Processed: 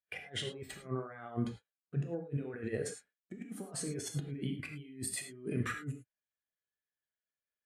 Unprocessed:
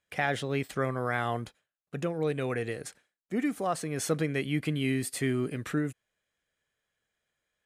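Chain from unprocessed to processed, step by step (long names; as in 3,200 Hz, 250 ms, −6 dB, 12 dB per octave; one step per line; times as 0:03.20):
low-shelf EQ 180 Hz −3 dB
compressor whose output falls as the input rises −37 dBFS, ratio −0.5
reverb whose tail is shaped and stops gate 130 ms flat, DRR 2 dB
every bin expanded away from the loudest bin 1.5 to 1
level −3.5 dB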